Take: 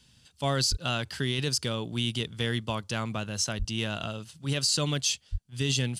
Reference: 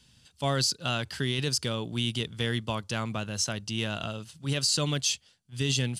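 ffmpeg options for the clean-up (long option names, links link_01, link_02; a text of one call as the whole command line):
ffmpeg -i in.wav -filter_complex "[0:a]asplit=3[link_01][link_02][link_03];[link_01]afade=type=out:start_time=0.7:duration=0.02[link_04];[link_02]highpass=frequency=140:width=0.5412,highpass=frequency=140:width=1.3066,afade=type=in:start_time=0.7:duration=0.02,afade=type=out:start_time=0.82:duration=0.02[link_05];[link_03]afade=type=in:start_time=0.82:duration=0.02[link_06];[link_04][link_05][link_06]amix=inputs=3:normalize=0,asplit=3[link_07][link_08][link_09];[link_07]afade=type=out:start_time=3.58:duration=0.02[link_10];[link_08]highpass=frequency=140:width=0.5412,highpass=frequency=140:width=1.3066,afade=type=in:start_time=3.58:duration=0.02,afade=type=out:start_time=3.7:duration=0.02[link_11];[link_09]afade=type=in:start_time=3.7:duration=0.02[link_12];[link_10][link_11][link_12]amix=inputs=3:normalize=0,asplit=3[link_13][link_14][link_15];[link_13]afade=type=out:start_time=5.31:duration=0.02[link_16];[link_14]highpass=frequency=140:width=0.5412,highpass=frequency=140:width=1.3066,afade=type=in:start_time=5.31:duration=0.02,afade=type=out:start_time=5.43:duration=0.02[link_17];[link_15]afade=type=in:start_time=5.43:duration=0.02[link_18];[link_16][link_17][link_18]amix=inputs=3:normalize=0" out.wav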